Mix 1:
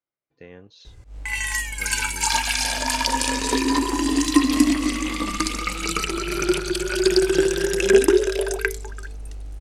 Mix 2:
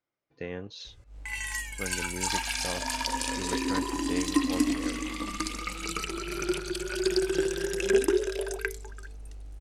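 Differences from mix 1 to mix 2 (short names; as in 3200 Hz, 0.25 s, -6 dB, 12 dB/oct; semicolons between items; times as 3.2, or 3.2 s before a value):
speech +6.5 dB; background -8.5 dB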